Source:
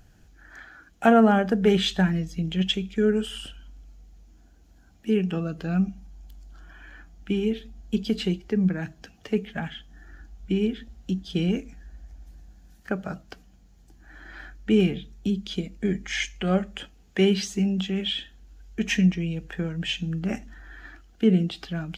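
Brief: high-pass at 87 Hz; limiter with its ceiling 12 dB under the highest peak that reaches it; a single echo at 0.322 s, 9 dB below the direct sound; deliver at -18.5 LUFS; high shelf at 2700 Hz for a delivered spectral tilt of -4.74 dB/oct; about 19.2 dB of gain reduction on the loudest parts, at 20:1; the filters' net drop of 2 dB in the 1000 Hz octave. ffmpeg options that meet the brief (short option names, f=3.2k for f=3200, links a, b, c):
-af "highpass=87,equalizer=f=1k:t=o:g=-4.5,highshelf=f=2.7k:g=7,acompressor=threshold=-32dB:ratio=20,alimiter=level_in=6dB:limit=-24dB:level=0:latency=1,volume=-6dB,aecho=1:1:322:0.355,volume=21.5dB"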